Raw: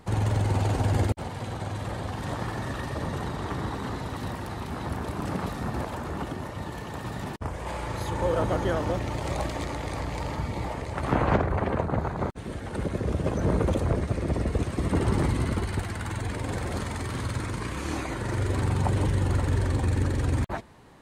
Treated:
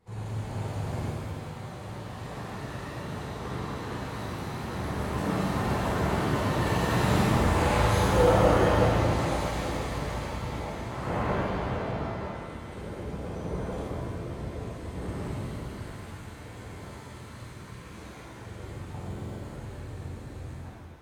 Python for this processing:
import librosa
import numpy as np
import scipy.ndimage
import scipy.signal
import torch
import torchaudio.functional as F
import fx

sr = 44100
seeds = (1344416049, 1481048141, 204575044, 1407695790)

y = fx.doppler_pass(x, sr, speed_mps=6, closest_m=4.4, pass_at_s=7.07)
y = fx.buffer_glitch(y, sr, at_s=(18.96,), block=2048, repeats=8)
y = fx.rev_shimmer(y, sr, seeds[0], rt60_s=1.8, semitones=7, shimmer_db=-8, drr_db=-10.0)